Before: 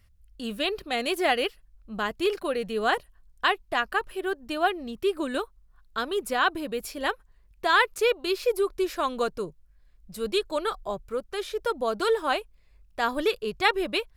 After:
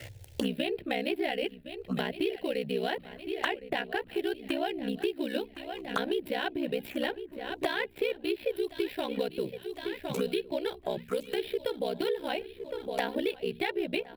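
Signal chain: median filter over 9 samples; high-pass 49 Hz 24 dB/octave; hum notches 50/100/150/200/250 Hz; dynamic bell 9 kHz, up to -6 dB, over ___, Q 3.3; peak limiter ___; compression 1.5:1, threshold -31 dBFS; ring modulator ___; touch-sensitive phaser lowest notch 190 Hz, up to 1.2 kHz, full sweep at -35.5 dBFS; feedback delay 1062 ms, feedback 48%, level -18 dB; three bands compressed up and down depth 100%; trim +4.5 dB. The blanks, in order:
-60 dBFS, -12.5 dBFS, 32 Hz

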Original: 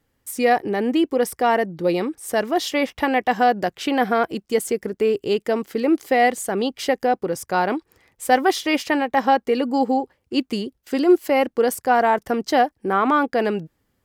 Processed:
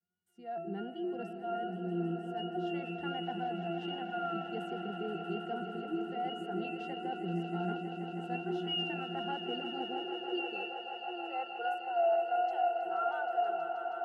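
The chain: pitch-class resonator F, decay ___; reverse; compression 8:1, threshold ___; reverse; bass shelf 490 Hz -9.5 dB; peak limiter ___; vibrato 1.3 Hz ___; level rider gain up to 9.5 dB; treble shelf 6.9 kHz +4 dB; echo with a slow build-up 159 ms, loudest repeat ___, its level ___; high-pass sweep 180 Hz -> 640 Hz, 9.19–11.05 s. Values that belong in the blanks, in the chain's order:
0.49 s, -40 dBFS, -40 dBFS, 62 cents, 5, -11.5 dB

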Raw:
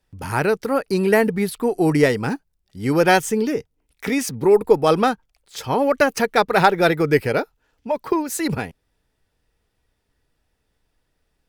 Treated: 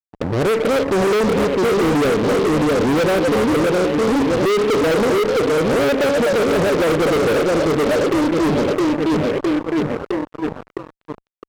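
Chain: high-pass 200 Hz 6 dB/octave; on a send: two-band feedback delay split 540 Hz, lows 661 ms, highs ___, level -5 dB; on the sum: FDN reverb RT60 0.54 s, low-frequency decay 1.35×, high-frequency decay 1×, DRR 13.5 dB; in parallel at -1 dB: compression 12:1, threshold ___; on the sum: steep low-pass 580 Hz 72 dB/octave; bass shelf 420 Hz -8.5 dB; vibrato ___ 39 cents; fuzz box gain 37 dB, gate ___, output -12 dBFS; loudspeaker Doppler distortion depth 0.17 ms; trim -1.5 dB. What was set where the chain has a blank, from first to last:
254 ms, -25 dBFS, 2.3 Hz, -41 dBFS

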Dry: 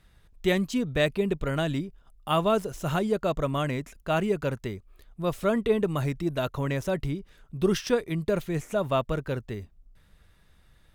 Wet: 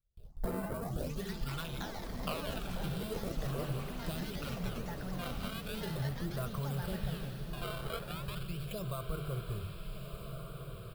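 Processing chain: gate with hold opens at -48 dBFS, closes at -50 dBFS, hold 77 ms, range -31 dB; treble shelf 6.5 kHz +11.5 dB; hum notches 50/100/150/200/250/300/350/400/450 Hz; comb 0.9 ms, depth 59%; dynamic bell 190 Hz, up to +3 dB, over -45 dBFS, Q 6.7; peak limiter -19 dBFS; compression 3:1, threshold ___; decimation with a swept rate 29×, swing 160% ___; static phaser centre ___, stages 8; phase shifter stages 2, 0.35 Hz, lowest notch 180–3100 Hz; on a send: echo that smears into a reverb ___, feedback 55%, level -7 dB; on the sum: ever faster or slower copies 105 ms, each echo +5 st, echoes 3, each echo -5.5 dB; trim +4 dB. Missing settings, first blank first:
-38 dBFS, 0.42 Hz, 1.3 kHz, 1411 ms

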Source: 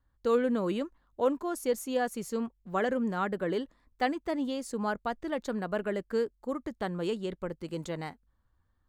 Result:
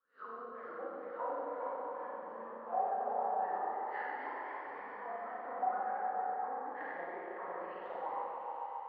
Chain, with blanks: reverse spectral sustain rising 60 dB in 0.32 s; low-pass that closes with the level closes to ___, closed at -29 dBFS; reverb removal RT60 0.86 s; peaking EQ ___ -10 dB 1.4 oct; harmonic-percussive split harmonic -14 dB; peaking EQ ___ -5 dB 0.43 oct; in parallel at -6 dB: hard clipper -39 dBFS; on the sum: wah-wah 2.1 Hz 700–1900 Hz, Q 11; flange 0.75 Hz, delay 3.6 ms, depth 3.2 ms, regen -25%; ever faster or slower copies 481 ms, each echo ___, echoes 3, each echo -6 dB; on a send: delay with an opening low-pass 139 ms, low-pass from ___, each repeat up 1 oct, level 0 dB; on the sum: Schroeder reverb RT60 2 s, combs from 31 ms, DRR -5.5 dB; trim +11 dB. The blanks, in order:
690 Hz, 11 kHz, 100 Hz, +1 st, 400 Hz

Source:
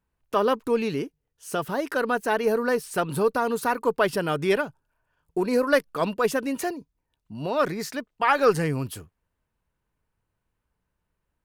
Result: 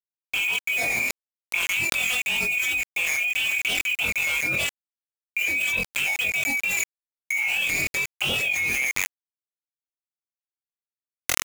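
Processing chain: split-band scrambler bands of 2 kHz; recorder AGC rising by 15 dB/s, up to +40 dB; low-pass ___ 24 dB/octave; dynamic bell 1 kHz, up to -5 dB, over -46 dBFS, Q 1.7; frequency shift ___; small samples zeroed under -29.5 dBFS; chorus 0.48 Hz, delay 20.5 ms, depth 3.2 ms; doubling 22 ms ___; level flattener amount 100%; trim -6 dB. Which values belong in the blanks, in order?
2.5 kHz, +39 Hz, -2.5 dB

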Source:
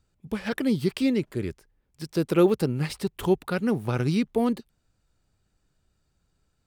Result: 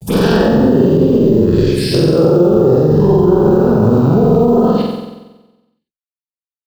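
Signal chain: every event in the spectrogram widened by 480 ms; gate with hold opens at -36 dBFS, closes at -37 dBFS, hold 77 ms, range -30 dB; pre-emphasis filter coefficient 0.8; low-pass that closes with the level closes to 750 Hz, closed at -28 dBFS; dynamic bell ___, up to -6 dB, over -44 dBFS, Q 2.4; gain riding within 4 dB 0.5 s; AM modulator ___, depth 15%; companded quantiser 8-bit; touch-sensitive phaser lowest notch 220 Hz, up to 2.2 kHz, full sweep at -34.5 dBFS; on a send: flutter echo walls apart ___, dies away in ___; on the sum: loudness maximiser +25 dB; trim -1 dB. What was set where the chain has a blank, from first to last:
290 Hz, 37 Hz, 7.9 m, 1.1 s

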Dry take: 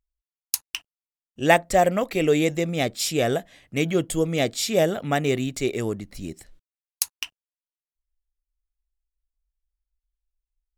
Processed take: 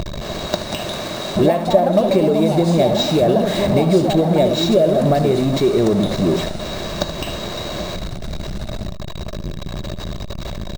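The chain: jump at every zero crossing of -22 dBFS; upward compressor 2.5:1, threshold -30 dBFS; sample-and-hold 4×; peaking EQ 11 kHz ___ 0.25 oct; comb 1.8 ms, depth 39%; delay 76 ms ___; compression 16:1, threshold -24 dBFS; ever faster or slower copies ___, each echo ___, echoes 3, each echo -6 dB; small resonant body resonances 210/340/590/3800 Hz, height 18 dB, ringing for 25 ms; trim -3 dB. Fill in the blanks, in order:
-10.5 dB, -11.5 dB, 299 ms, +4 st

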